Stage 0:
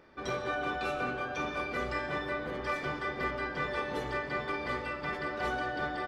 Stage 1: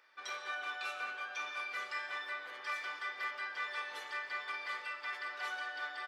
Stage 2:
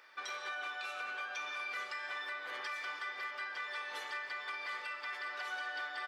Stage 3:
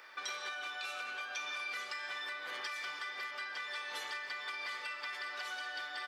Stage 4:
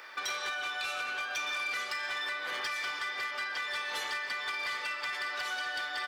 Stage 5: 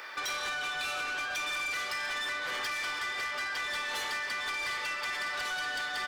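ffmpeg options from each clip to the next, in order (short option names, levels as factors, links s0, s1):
-af "highpass=1400,volume=0.891"
-af "alimiter=level_in=5.31:limit=0.0631:level=0:latency=1:release=282,volume=0.188,volume=2.24"
-filter_complex "[0:a]acrossover=split=230|3000[s0][s1][s2];[s1]acompressor=threshold=0.00447:ratio=6[s3];[s0][s3][s2]amix=inputs=3:normalize=0,volume=1.88"
-af "volume=59.6,asoftclip=hard,volume=0.0168,volume=2.11"
-af "asoftclip=type=tanh:threshold=0.0168,volume=1.78"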